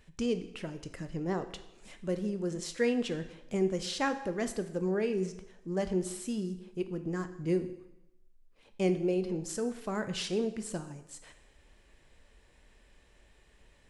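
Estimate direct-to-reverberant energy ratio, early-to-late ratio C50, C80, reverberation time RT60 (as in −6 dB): 9.0 dB, 12.0 dB, 14.5 dB, 0.90 s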